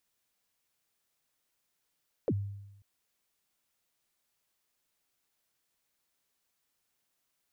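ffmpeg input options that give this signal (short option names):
-f lavfi -i "aevalsrc='0.0631*pow(10,-3*t/0.96)*sin(2*PI*(580*0.052/log(100/580)*(exp(log(100/580)*min(t,0.052)/0.052)-1)+100*max(t-0.052,0)))':d=0.54:s=44100"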